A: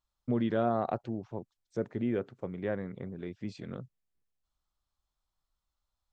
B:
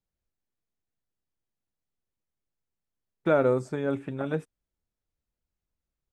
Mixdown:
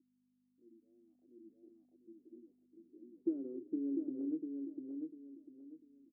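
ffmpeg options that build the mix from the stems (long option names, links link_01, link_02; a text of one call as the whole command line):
ffmpeg -i stem1.wav -i stem2.wav -filter_complex "[0:a]alimiter=level_in=2.5dB:limit=-24dB:level=0:latency=1:release=255,volume=-2.5dB,asplit=2[link_01][link_02];[link_02]afreqshift=-3[link_03];[link_01][link_03]amix=inputs=2:normalize=1,adelay=300,volume=-6dB,asplit=2[link_04][link_05];[link_05]volume=-11.5dB[link_06];[1:a]acompressor=threshold=-34dB:ratio=6,aeval=exprs='val(0)+0.00251*(sin(2*PI*50*n/s)+sin(2*PI*2*50*n/s)/2+sin(2*PI*3*50*n/s)/3+sin(2*PI*4*50*n/s)/4+sin(2*PI*5*50*n/s)/5)':channel_layout=same,volume=1dB,asplit=3[link_07][link_08][link_09];[link_08]volume=-5dB[link_10];[link_09]apad=whole_len=283166[link_11];[link_04][link_11]sidechaingate=range=-12dB:threshold=-49dB:ratio=16:detection=peak[link_12];[link_06][link_10]amix=inputs=2:normalize=0,aecho=0:1:697|1394|2091|2788:1|0.28|0.0784|0.022[link_13];[link_12][link_07][link_13]amix=inputs=3:normalize=0,dynaudnorm=framelen=200:gausssize=11:maxgain=5.5dB,asuperpass=centerf=310:order=4:qfactor=4.3" out.wav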